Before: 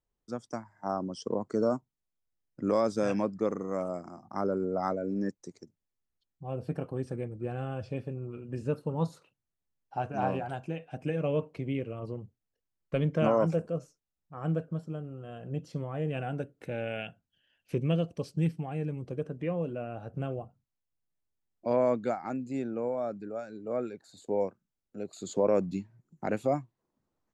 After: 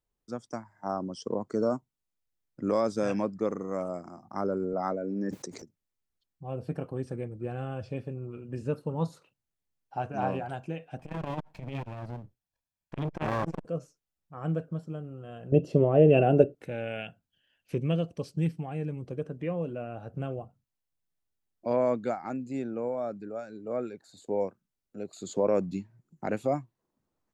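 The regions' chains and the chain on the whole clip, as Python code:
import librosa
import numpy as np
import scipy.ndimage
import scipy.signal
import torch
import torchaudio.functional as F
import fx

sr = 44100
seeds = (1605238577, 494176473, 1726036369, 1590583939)

y = fx.chain(x, sr, fx.highpass(hz=130.0, slope=12),
    fx.high_shelf(hz=4500.0, db=-6.5),
    fx.sustainer(db_per_s=47.0), at=(4.73, 5.62))
y = fx.chain(y, sr, fx.lower_of_two(delay_ms=1.2),
    fx.transformer_sat(knee_hz=530.0), at=(10.99, 13.65))
y = fx.chain(y, sr, fx.low_shelf(hz=390.0, db=9.0),
    fx.small_body(hz=(410.0, 590.0, 2700.0), ring_ms=25, db=16), at=(15.52, 16.55))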